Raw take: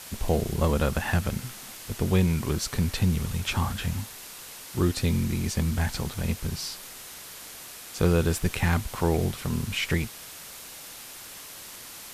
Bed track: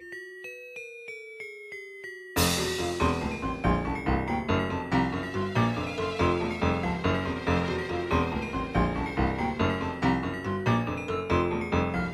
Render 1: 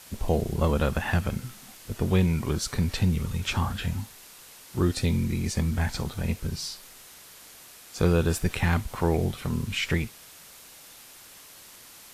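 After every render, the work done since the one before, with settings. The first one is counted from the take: noise print and reduce 6 dB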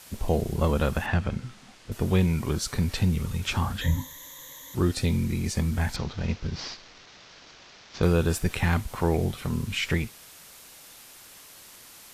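1.06–1.92 air absorption 97 m; 3.81–4.75 ripple EQ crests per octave 1.1, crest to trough 18 dB; 5.96–8.03 CVSD 32 kbps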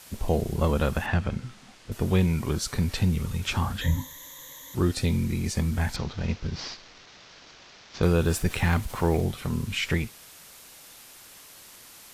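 8.21–9.21 G.711 law mismatch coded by mu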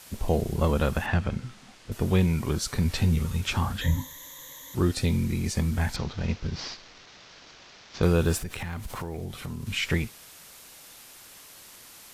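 2.84–3.41 doubler 13 ms -6.5 dB; 8.38–9.67 compressor 5:1, threshold -31 dBFS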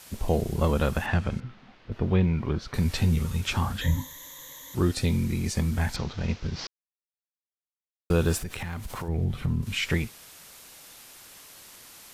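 1.4–2.74 air absorption 270 m; 6.67–8.1 mute; 9.08–9.63 tone controls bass +11 dB, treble -9 dB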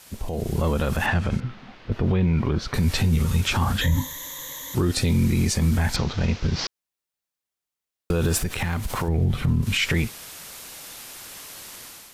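limiter -21 dBFS, peak gain reduction 10.5 dB; AGC gain up to 8.5 dB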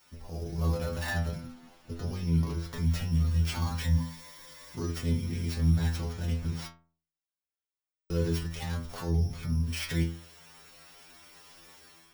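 sample sorter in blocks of 8 samples; metallic resonator 82 Hz, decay 0.47 s, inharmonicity 0.002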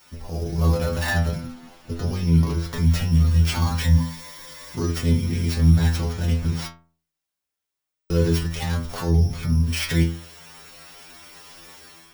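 gain +9 dB

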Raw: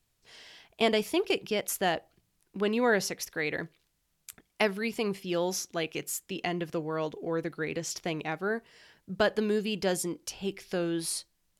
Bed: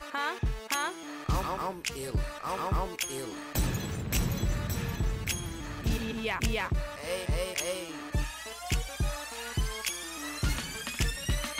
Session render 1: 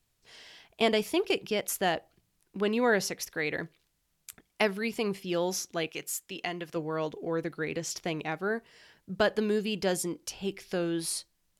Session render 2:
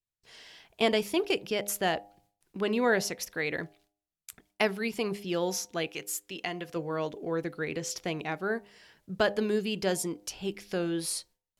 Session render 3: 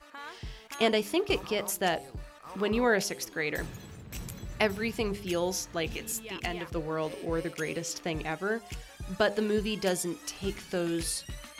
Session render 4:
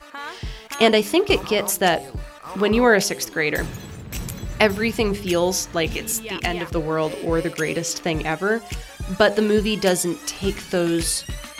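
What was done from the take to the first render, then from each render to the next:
5.89–6.76 low shelf 480 Hz -8 dB
gate with hold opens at -57 dBFS; de-hum 101.6 Hz, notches 9
add bed -11.5 dB
gain +10 dB

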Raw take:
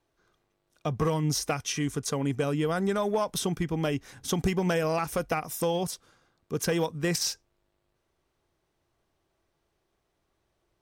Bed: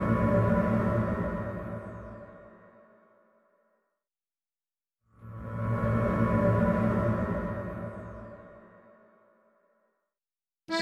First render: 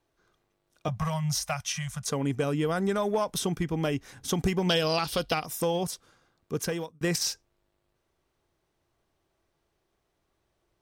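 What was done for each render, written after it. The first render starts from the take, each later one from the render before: 0.88–2.05 elliptic band-stop 190–590 Hz; 4.69–5.46 band shelf 3800 Hz +15.5 dB 1 oct; 6.54–7.01 fade out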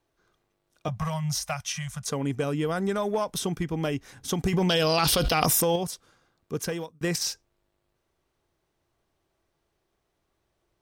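4.53–5.76 fast leveller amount 100%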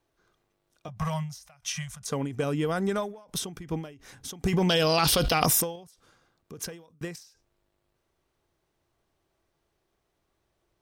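ending taper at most 110 dB/s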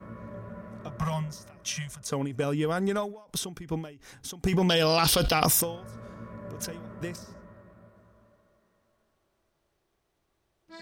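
add bed -17 dB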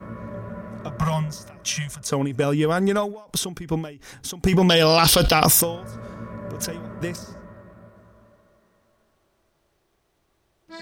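gain +7 dB; limiter -1 dBFS, peak gain reduction 1 dB

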